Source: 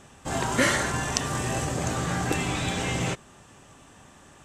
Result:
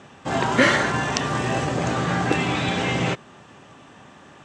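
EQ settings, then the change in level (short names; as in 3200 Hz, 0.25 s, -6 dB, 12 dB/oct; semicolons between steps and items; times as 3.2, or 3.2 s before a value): BPF 120–4200 Hz; +6.0 dB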